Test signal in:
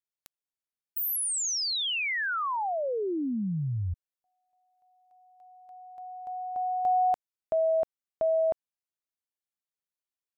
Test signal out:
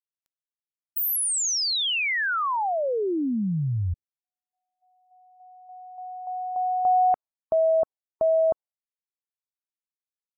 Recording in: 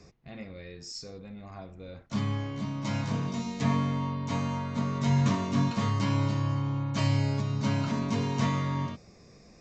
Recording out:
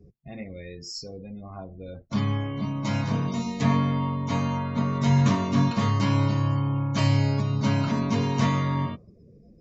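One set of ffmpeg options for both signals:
-af "afftdn=nr=30:nf=-49,volume=4.5dB"

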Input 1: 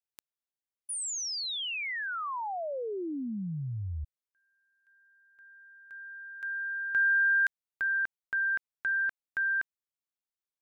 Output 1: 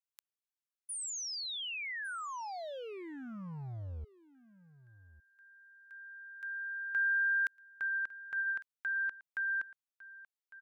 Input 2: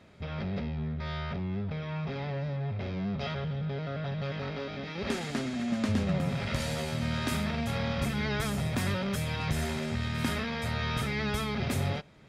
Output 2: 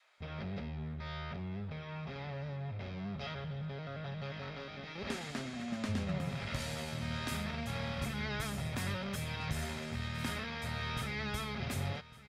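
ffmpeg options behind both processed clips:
-filter_complex "[0:a]adynamicequalizer=threshold=0.00794:dfrequency=330:dqfactor=0.83:tfrequency=330:tqfactor=0.83:attack=5:release=100:ratio=0.375:range=2:mode=cutabove:tftype=bell,acrossover=split=730|2700[a][b][c];[a]aeval=exprs='sgn(val(0))*max(abs(val(0))-0.00335,0)':c=same[d];[d][b][c]amix=inputs=3:normalize=0,aecho=1:1:1154:0.126,volume=-5dB"

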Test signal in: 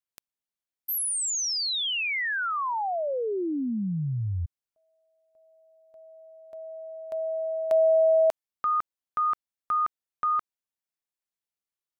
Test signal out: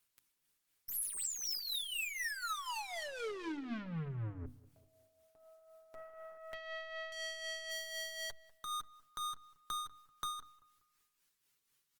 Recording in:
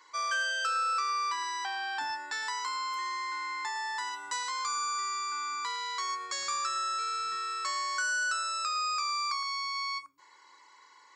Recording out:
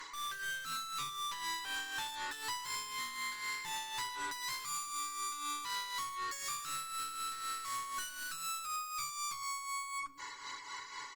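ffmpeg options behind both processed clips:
-filter_complex "[0:a]aeval=exprs='(tanh(178*val(0)+0.25)-tanh(0.25))/178':c=same,equalizer=f=670:t=o:w=0.87:g=-11,aecho=1:1:7.1:0.53,acompressor=threshold=-51dB:ratio=5:attack=5.2:release=72:knee=6:detection=rms,bandreject=f=50:t=h:w=6,bandreject=f=100:t=h:w=6,bandreject=f=150:t=h:w=6,bandreject=f=200:t=h:w=6,bandreject=f=250:t=h:w=6,bandreject=f=300:t=h:w=6,bandreject=f=350:t=h:w=6,acontrast=61,tremolo=f=4:d=0.55,asplit=2[a][b];[b]adelay=194,lowpass=f=1.7k:p=1,volume=-18.5dB,asplit=2[c][d];[d]adelay=194,lowpass=f=1.7k:p=1,volume=0.44,asplit=2[e][f];[f]adelay=194,lowpass=f=1.7k:p=1,volume=0.44,asplit=2[g][h];[h]adelay=194,lowpass=f=1.7k:p=1,volume=0.44[i];[a][c][e][g][i]amix=inputs=5:normalize=0,volume=9.5dB" -ar 48000 -c:a libopus -b:a 24k

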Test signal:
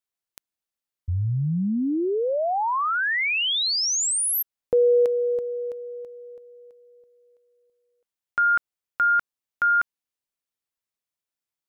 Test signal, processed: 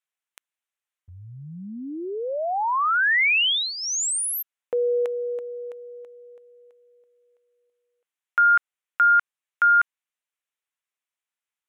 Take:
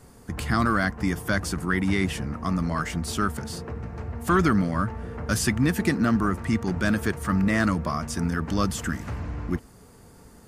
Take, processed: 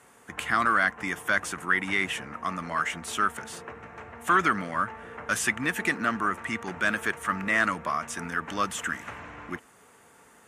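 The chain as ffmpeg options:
-af "bandpass=f=2.9k:t=q:w=0.55:csg=0,equalizer=f=4.7k:t=o:w=0.56:g=-14.5,volume=6dB"

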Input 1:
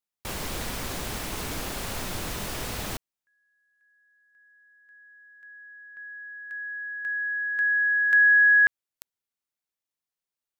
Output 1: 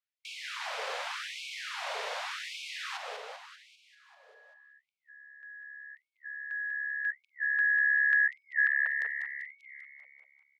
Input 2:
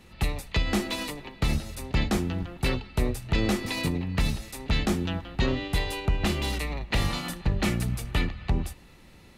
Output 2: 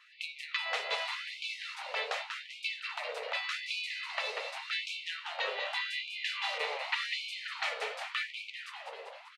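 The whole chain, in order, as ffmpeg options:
-filter_complex "[0:a]lowpass=3.7k,lowshelf=f=410:g=10,asplit=2[a][b];[b]adelay=189,lowpass=f=2.6k:p=1,volume=-9dB,asplit=2[c][d];[d]adelay=189,lowpass=f=2.6k:p=1,volume=0.52,asplit=2[e][f];[f]adelay=189,lowpass=f=2.6k:p=1,volume=0.52,asplit=2[g][h];[h]adelay=189,lowpass=f=2.6k:p=1,volume=0.52,asplit=2[i][j];[j]adelay=189,lowpass=f=2.6k:p=1,volume=0.52,asplit=2[k][l];[l]adelay=189,lowpass=f=2.6k:p=1,volume=0.52[m];[c][e][g][i][k][m]amix=inputs=6:normalize=0[n];[a][n]amix=inputs=2:normalize=0,acrossover=split=380|1400[o][p][q];[o]acompressor=threshold=-32dB:ratio=4[r];[p]acompressor=threshold=-37dB:ratio=4[s];[q]acompressor=threshold=-28dB:ratio=4[t];[r][s][t]amix=inputs=3:normalize=0,asplit=2[u][v];[v]asplit=8[w][x][y][z][aa][ab][ac][ad];[w]adelay=196,afreqshift=70,volume=-7dB[ae];[x]adelay=392,afreqshift=140,volume=-11.2dB[af];[y]adelay=588,afreqshift=210,volume=-15.3dB[ag];[z]adelay=784,afreqshift=280,volume=-19.5dB[ah];[aa]adelay=980,afreqshift=350,volume=-23.6dB[ai];[ab]adelay=1176,afreqshift=420,volume=-27.8dB[aj];[ac]adelay=1372,afreqshift=490,volume=-31.9dB[ak];[ad]adelay=1568,afreqshift=560,volume=-36.1dB[al];[ae][af][ag][ah][ai][aj][ak][al]amix=inputs=8:normalize=0[am];[u][am]amix=inputs=2:normalize=0,afftfilt=real='re*gte(b*sr/1024,400*pow(2200/400,0.5+0.5*sin(2*PI*0.86*pts/sr)))':imag='im*gte(b*sr/1024,400*pow(2200/400,0.5+0.5*sin(2*PI*0.86*pts/sr)))':win_size=1024:overlap=0.75"

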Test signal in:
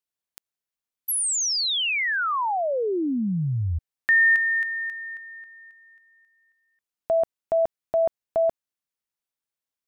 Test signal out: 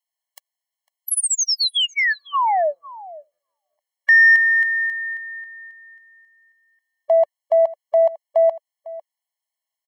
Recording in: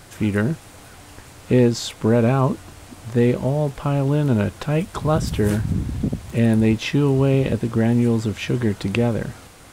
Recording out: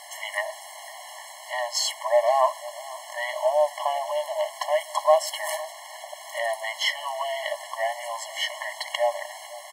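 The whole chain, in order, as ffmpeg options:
-filter_complex "[0:a]acontrast=78,asplit=2[a][b];[b]adelay=501.5,volume=-18dB,highshelf=f=4k:g=-11.3[c];[a][c]amix=inputs=2:normalize=0,afftfilt=real='re*eq(mod(floor(b*sr/1024/560),2),1)':imag='im*eq(mod(floor(b*sr/1024/560),2),1)':win_size=1024:overlap=0.75"

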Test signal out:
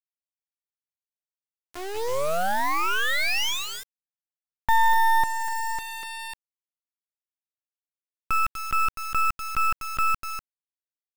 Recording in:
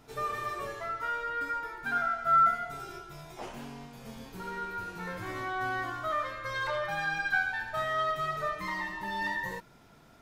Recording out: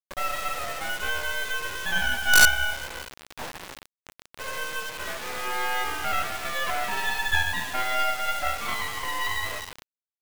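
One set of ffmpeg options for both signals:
-af "aecho=1:1:246:0.282,highpass=f=340:t=q:w=0.5412,highpass=f=340:t=q:w=1.307,lowpass=f=3.2k:t=q:w=0.5176,lowpass=f=3.2k:t=q:w=0.7071,lowpass=f=3.2k:t=q:w=1.932,afreqshift=130,acrusher=bits=4:dc=4:mix=0:aa=0.000001,volume=8.5dB"

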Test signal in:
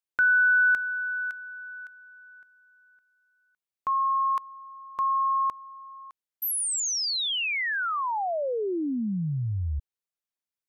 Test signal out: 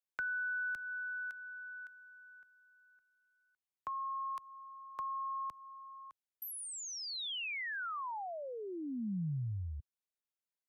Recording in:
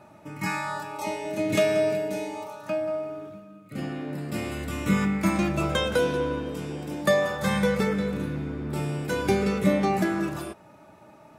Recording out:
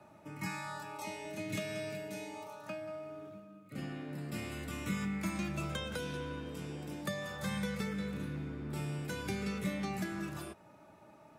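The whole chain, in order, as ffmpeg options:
-filter_complex "[0:a]acrossover=split=92|210|1200|2800[a][b][c][d][e];[a]acompressor=threshold=-45dB:ratio=4[f];[b]acompressor=threshold=-29dB:ratio=4[g];[c]acompressor=threshold=-38dB:ratio=4[h];[d]acompressor=threshold=-39dB:ratio=4[i];[e]acompressor=threshold=-38dB:ratio=4[j];[f][g][h][i][j]amix=inputs=5:normalize=0,volume=-7dB"

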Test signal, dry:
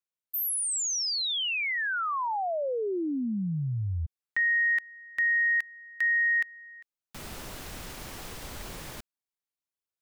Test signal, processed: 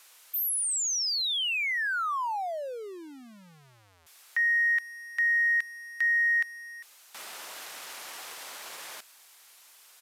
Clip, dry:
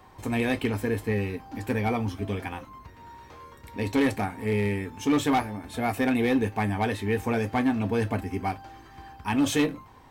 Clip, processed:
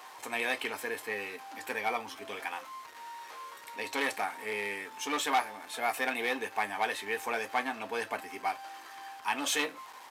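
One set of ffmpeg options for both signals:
-af "aeval=exprs='val(0)+0.5*0.00596*sgn(val(0))':c=same,aresample=32000,aresample=44100,highpass=750"

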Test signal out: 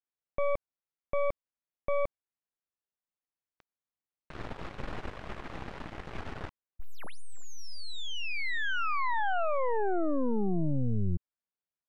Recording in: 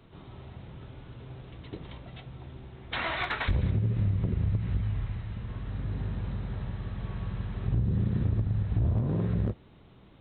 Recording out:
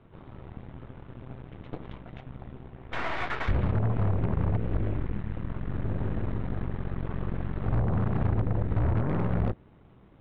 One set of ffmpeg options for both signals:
-af "aeval=exprs='0.1*(cos(1*acos(clip(val(0)/0.1,-1,1)))-cos(1*PI/2))+0.00178*(cos(3*acos(clip(val(0)/0.1,-1,1)))-cos(3*PI/2))+0.0251*(cos(8*acos(clip(val(0)/0.1,-1,1)))-cos(8*PI/2))':c=same,lowpass=2k"

